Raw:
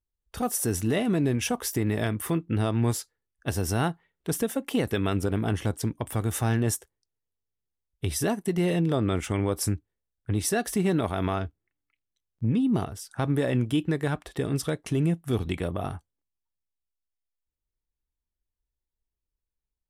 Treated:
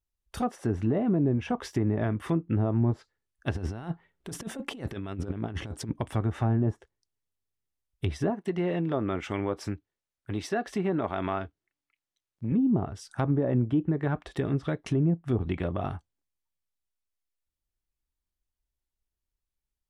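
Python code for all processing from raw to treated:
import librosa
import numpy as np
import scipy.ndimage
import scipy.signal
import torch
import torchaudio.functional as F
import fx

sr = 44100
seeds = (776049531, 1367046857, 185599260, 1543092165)

y = fx.chain(x, sr, fx.over_compress(threshold_db=-31.0, ratio=-0.5),
    fx.high_shelf(hz=2100.0, db=-7.0), at=(3.55, 6.01))
y = fx.chain(y, sr, fx.low_shelf(hz=170.0, db=-11.5),
    fx.resample_linear(factor=2), at=(8.3, 12.52))
y = fx.notch(y, sr, hz=470.0, q=12.0)
y = fx.env_lowpass_down(y, sr, base_hz=770.0, full_db=-21.0)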